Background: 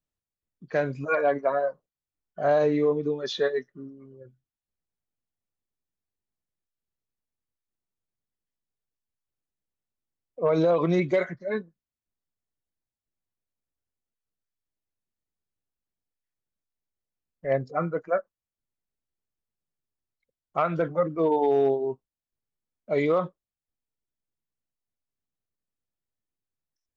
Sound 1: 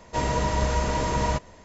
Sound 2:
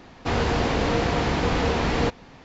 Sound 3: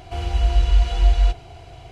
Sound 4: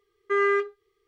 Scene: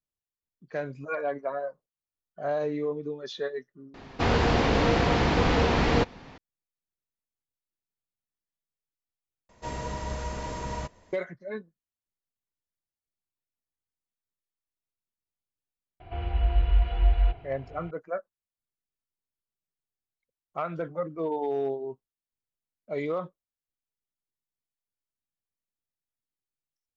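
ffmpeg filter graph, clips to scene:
-filter_complex "[0:a]volume=0.447[s0];[2:a]lowpass=6300[s1];[3:a]lowpass=f=2700:w=0.5412,lowpass=f=2700:w=1.3066[s2];[s0]asplit=2[s3][s4];[s3]atrim=end=9.494[s5];[1:a]atrim=end=1.64,asetpts=PTS-STARTPTS,volume=0.335[s6];[s4]atrim=start=11.126[s7];[s1]atrim=end=2.44,asetpts=PTS-STARTPTS,afade=t=in:d=0.004:c=hsin,afade=t=out:st=2.436:d=0.004:c=hsin,adelay=3940[s8];[s2]atrim=end=1.91,asetpts=PTS-STARTPTS,volume=0.501,afade=t=in:d=0.004:c=hsin,afade=t=out:st=1.906:d=0.004:c=hsin,adelay=16000[s9];[s5][s6]acrossfade=d=0.004:c1=hsin:c2=hsin[s10];[s10][s7]acrossfade=d=0.004:c1=hsin:c2=hsin[s11];[s11][s8][s9]amix=inputs=3:normalize=0"

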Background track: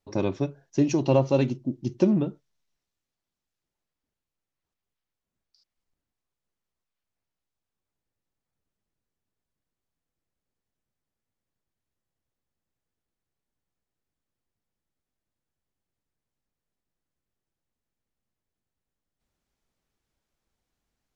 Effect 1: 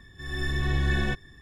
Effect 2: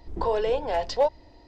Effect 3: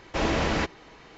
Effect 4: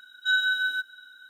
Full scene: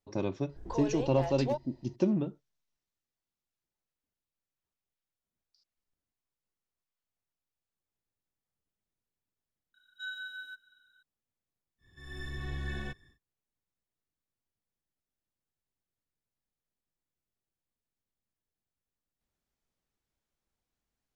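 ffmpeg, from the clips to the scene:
-filter_complex "[0:a]volume=0.473[s0];[2:a]highshelf=f=7100:g=8.5,atrim=end=1.47,asetpts=PTS-STARTPTS,volume=0.266,afade=t=in:d=0.004:c=hsin,afade=t=out:st=1.466:d=0.004:c=hsin,adelay=490[s1];[4:a]atrim=end=1.29,asetpts=PTS-STARTPTS,volume=0.141,afade=t=in:d=0.004:c=hsin,afade=t=out:st=1.286:d=0.004:c=hsin,adelay=9740[s2];[1:a]atrim=end=1.41,asetpts=PTS-STARTPTS,volume=0.251,afade=t=in:d=0.1,afade=t=out:st=1.31:d=0.1,adelay=519498S[s3];[s0][s1][s2][s3]amix=inputs=4:normalize=0"

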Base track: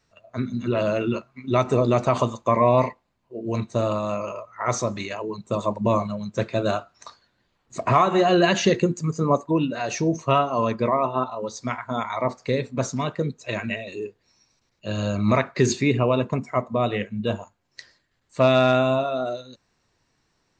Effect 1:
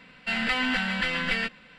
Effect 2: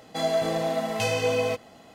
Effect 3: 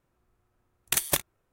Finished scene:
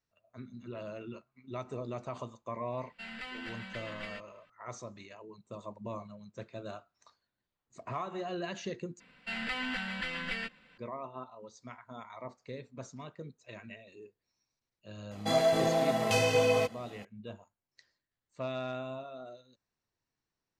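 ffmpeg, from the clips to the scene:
-filter_complex "[1:a]asplit=2[s0][s1];[0:a]volume=0.106[s2];[s1]aresample=32000,aresample=44100[s3];[2:a]aresample=32000,aresample=44100[s4];[s2]asplit=2[s5][s6];[s5]atrim=end=9.004[s7];[s3]atrim=end=1.78,asetpts=PTS-STARTPTS,volume=0.335[s8];[s6]atrim=start=10.776[s9];[s0]atrim=end=1.78,asetpts=PTS-STARTPTS,volume=0.141,afade=t=in:d=0.004:c=hsin,afade=t=out:st=1.776:d=0.004:c=hsin,adelay=2720[s10];[s4]atrim=end=1.94,asetpts=PTS-STARTPTS,volume=0.841,afade=t=in:d=0.004:c=hsin,afade=t=out:st=1.936:d=0.004:c=hsin,adelay=15110[s11];[s7][s8]acrossfade=d=0.004:c1=hsin:c2=hsin[s12];[s12][s9]acrossfade=d=0.004:c1=hsin:c2=hsin[s13];[s13][s10][s11]amix=inputs=3:normalize=0"

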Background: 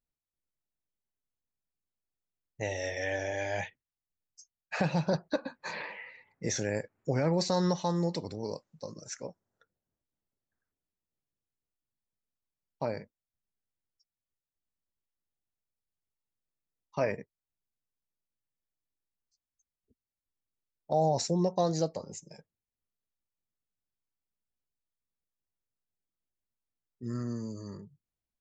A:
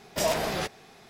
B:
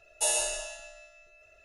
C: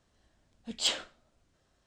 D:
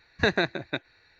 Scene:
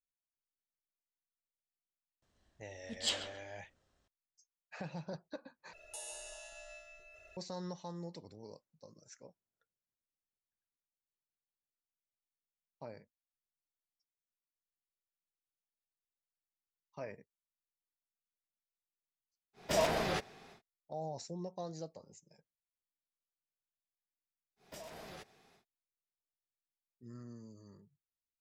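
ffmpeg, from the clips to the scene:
-filter_complex "[1:a]asplit=2[s0][s1];[0:a]volume=0.178[s2];[3:a]asplit=2[s3][s4];[s4]adelay=136,lowpass=f=1900:p=1,volume=0.398,asplit=2[s5][s6];[s6]adelay=136,lowpass=f=1900:p=1,volume=0.42,asplit=2[s7][s8];[s8]adelay=136,lowpass=f=1900:p=1,volume=0.42,asplit=2[s9][s10];[s10]adelay=136,lowpass=f=1900:p=1,volume=0.42,asplit=2[s11][s12];[s12]adelay=136,lowpass=f=1900:p=1,volume=0.42[s13];[s3][s5][s7][s9][s11][s13]amix=inputs=6:normalize=0[s14];[2:a]acompressor=threshold=0.0126:ratio=10:attack=0.12:release=839:knee=1:detection=peak[s15];[s0]highshelf=f=7200:g=-9[s16];[s1]acompressor=threshold=0.0282:ratio=10:attack=5.9:release=232:knee=6:detection=peak[s17];[s2]asplit=2[s18][s19];[s18]atrim=end=5.734[s20];[s15]atrim=end=1.64,asetpts=PTS-STARTPTS,volume=0.944[s21];[s19]atrim=start=7.366[s22];[s14]atrim=end=1.86,asetpts=PTS-STARTPTS,volume=0.501,afade=t=in:d=0.004:c=hsin,afade=t=out:st=1.856:d=0.004:c=hsin,adelay=2220[s23];[s16]atrim=end=1.09,asetpts=PTS-STARTPTS,volume=0.631,afade=t=in:d=0.1,afade=t=out:st=0.99:d=0.1,adelay=19530[s24];[s17]atrim=end=1.09,asetpts=PTS-STARTPTS,volume=0.188,afade=t=in:d=0.1,afade=t=out:st=0.99:d=0.1,adelay=24560[s25];[s20][s21]acrossfade=d=0.004:c1=hsin:c2=hsin[s26];[s26][s22]acrossfade=d=0.004:c1=hsin:c2=hsin[s27];[s27][s23][s24][s25]amix=inputs=4:normalize=0"

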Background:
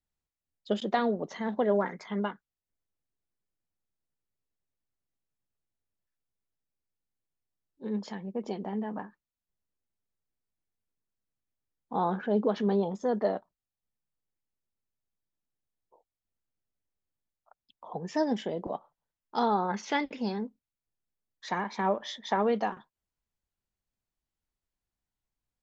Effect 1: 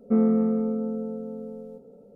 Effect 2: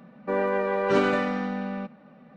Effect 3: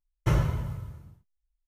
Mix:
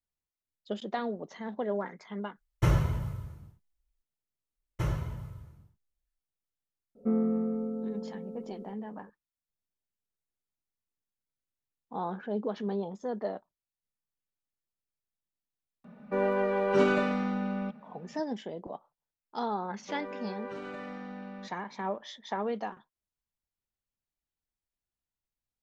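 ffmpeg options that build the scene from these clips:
-filter_complex "[3:a]asplit=2[s0][s1];[2:a]asplit=2[s2][s3];[0:a]volume=0.501[s4];[s2]aecho=1:1:4.8:0.52[s5];[s3]acompressor=threshold=0.0562:ratio=6:attack=3.2:release=140:knee=1:detection=peak[s6];[s0]atrim=end=1.67,asetpts=PTS-STARTPTS,volume=0.944,afade=t=in:d=0.004:c=hsin,afade=t=out:st=1.666:d=0.004:c=hsin,adelay=2360[s7];[s1]atrim=end=1.67,asetpts=PTS-STARTPTS,volume=0.447,afade=t=in:d=0.004:c=hsin,afade=t=out:st=1.666:d=0.004:c=hsin,adelay=199773S[s8];[1:a]atrim=end=2.15,asetpts=PTS-STARTPTS,volume=0.447,afade=t=in:d=0.004:c=hsin,afade=t=out:st=2.146:d=0.004:c=hsin,adelay=6950[s9];[s5]atrim=end=2.36,asetpts=PTS-STARTPTS,volume=0.631,afade=t=in:d=0.004:c=hsin,afade=t=out:st=2.356:d=0.004:c=hsin,adelay=15840[s10];[s6]atrim=end=2.36,asetpts=PTS-STARTPTS,volume=0.266,afade=t=in:d=0.004:c=hsin,afade=t=out:st=2.356:d=0.004:c=hsin,adelay=19610[s11];[s4][s7][s8][s9][s10][s11]amix=inputs=6:normalize=0"

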